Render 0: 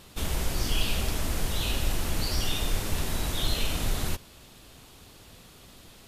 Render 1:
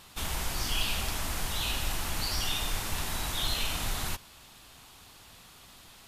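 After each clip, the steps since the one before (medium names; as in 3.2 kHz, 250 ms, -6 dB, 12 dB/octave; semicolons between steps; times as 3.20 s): resonant low shelf 660 Hz -6 dB, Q 1.5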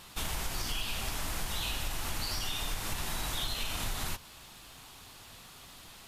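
compression, threshold -32 dBFS, peak gain reduction 9 dB; flange 0.66 Hz, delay 5.5 ms, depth 3.2 ms, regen -74%; crackle 480 per s -65 dBFS; trim +6 dB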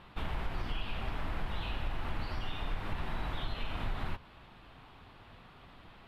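distance through air 480 m; trim +1.5 dB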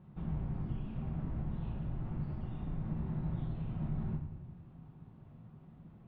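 band-pass filter 150 Hz, Q 1.8; simulated room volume 250 m³, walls mixed, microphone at 0.99 m; trim +5.5 dB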